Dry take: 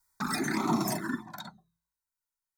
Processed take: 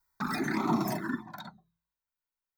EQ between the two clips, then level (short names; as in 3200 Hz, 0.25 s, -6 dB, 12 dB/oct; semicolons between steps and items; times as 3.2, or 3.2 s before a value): bell 8700 Hz -11 dB 1.4 oct; 0.0 dB